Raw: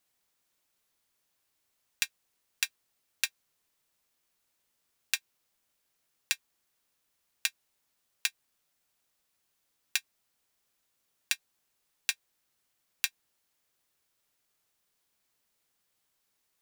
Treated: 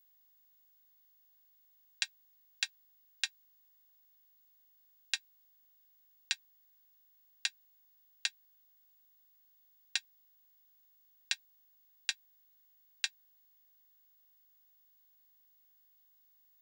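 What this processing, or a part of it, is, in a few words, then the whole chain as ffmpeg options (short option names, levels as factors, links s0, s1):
old television with a line whistle: -af "highpass=f=180:w=0.5412,highpass=f=180:w=1.3066,equalizer=f=300:t=q:w=4:g=-8,equalizer=f=450:t=q:w=4:g=-8,equalizer=f=1200:t=q:w=4:g=-9,equalizer=f=2400:t=q:w=4:g=-8,equalizer=f=5900:t=q:w=4:g=-5,lowpass=f=7000:w=0.5412,lowpass=f=7000:w=1.3066,aeval=exprs='val(0)+0.000562*sin(2*PI*15625*n/s)':c=same"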